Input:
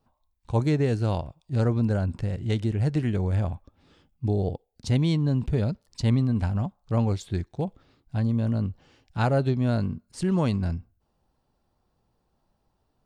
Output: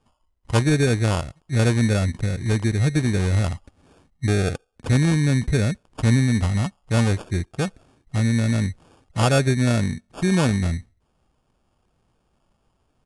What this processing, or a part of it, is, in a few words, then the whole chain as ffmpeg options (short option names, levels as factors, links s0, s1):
crushed at another speed: -af "asetrate=88200,aresample=44100,acrusher=samples=11:mix=1:aa=0.000001,asetrate=22050,aresample=44100,volume=1.68"